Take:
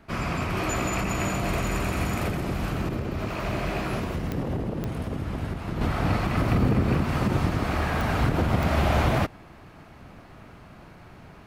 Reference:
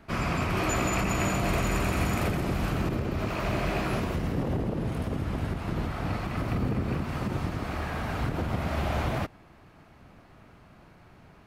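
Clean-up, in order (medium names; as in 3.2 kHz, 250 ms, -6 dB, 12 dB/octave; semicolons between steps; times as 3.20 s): de-click; trim 0 dB, from 5.81 s -6.5 dB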